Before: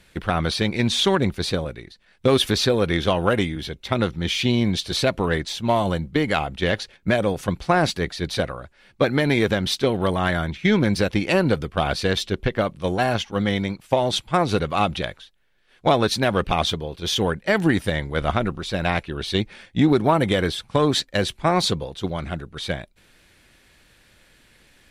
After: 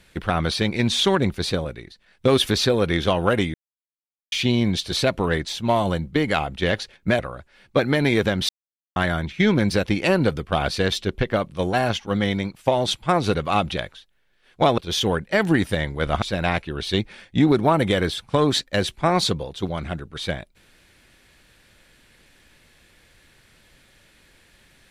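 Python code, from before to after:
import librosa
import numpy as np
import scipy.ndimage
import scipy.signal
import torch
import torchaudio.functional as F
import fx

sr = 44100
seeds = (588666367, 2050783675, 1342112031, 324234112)

y = fx.edit(x, sr, fx.silence(start_s=3.54, length_s=0.78),
    fx.cut(start_s=7.19, length_s=1.25),
    fx.silence(start_s=9.74, length_s=0.47),
    fx.cut(start_s=16.03, length_s=0.9),
    fx.cut(start_s=18.37, length_s=0.26), tone=tone)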